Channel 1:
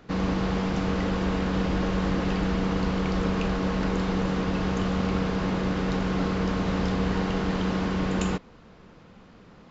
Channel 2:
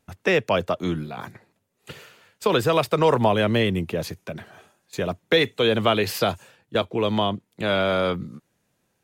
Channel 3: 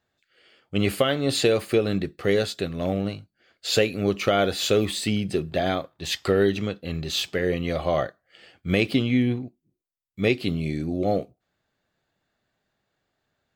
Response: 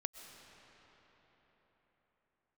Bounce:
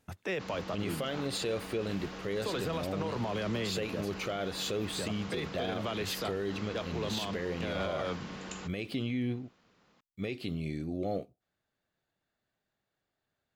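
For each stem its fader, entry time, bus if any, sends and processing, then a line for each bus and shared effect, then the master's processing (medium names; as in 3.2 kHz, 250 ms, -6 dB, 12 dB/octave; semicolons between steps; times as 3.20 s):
-13.5 dB, 0.30 s, no send, tilt EQ +2.5 dB/octave
-2.0 dB, 0.00 s, no send, peak limiter -15.5 dBFS, peak gain reduction 8.5 dB; auto duck -8 dB, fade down 0.35 s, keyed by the third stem
-8.5 dB, 0.00 s, no send, none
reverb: none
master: peak limiter -24.5 dBFS, peak gain reduction 9.5 dB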